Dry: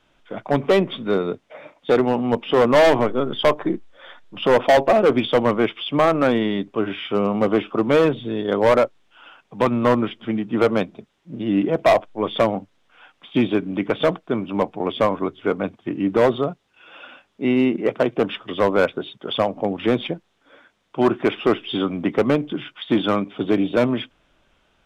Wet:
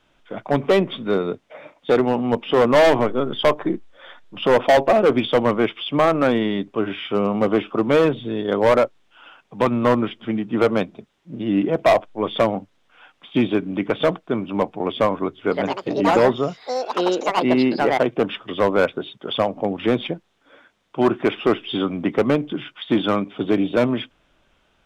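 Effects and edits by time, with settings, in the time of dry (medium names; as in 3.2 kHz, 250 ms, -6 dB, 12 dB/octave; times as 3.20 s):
15.37–18.87 s: ever faster or slower copies 142 ms, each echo +6 st, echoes 2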